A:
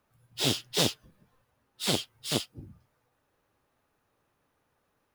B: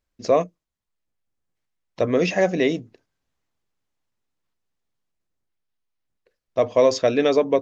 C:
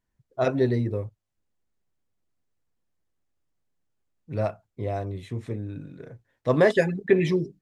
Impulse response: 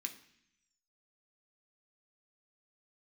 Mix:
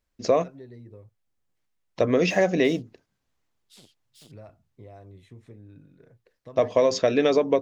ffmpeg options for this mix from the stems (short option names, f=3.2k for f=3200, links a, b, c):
-filter_complex "[0:a]equalizer=f=1.2k:t=o:w=2.5:g=-7,acompressor=threshold=-34dB:ratio=6,afwtdn=0.002,adelay=1900,volume=-16dB[a];[1:a]acompressor=threshold=-17dB:ratio=4,volume=1dB[b];[2:a]acompressor=threshold=-29dB:ratio=6,volume=-12.5dB[c];[a][b][c]amix=inputs=3:normalize=0"